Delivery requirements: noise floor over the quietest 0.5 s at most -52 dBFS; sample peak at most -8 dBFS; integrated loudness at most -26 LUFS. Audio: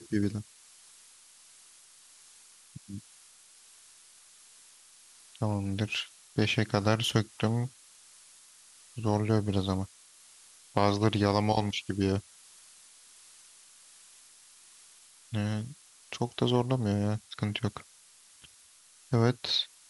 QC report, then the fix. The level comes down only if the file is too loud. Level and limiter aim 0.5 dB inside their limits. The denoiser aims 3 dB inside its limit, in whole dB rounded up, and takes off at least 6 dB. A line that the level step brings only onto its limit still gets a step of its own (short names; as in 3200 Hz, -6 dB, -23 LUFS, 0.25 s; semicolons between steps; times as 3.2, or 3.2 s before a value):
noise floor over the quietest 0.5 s -58 dBFS: OK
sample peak -9.0 dBFS: OK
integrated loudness -30.0 LUFS: OK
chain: none